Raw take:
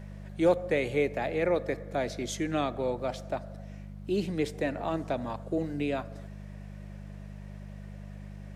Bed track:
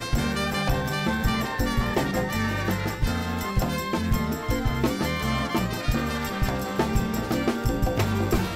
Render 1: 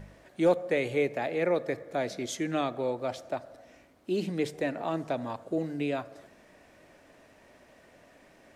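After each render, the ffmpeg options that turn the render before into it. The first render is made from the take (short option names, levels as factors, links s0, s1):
-af "bandreject=f=50:t=h:w=4,bandreject=f=100:t=h:w=4,bandreject=f=150:t=h:w=4,bandreject=f=200:t=h:w=4"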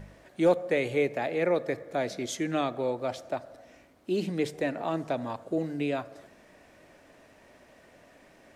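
-af "volume=1.12"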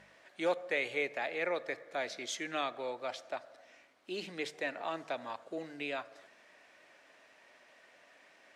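-af "bandpass=f=2600:t=q:w=0.55:csg=0"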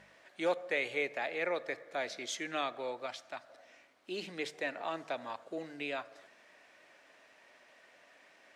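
-filter_complex "[0:a]asettb=1/sr,asplit=3[s0][s1][s2];[s0]atrim=end=3.064[s3];[s1]atrim=start=3.06:end=3.49,asetpts=PTS-STARTPTS,afade=t=in:d=0.004:c=qsin,afade=t=out:st=0.426:d=0.004:c=qsin,equalizer=f=480:w=1.5:g=-11[s4];[s2]atrim=start=3.486[s5];[s3][s4]acrossfade=d=0.004:c1=hsin:c2=qsin[s6];[s6][s5]acrossfade=d=0.004:c1=qsin:c2=hsin"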